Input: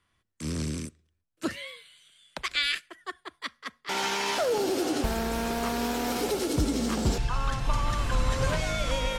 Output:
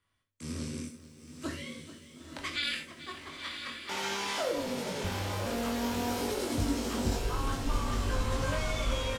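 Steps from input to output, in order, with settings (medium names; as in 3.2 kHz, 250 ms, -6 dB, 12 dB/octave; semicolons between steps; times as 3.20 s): 4.51–5.46 s: ring modulator 130 Hz; doubling 21 ms -3.5 dB; echo that smears into a reverb 973 ms, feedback 56%, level -6.5 dB; gated-style reverb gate 100 ms flat, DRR 4.5 dB; bit-crushed delay 437 ms, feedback 35%, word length 8-bit, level -15 dB; trim -8 dB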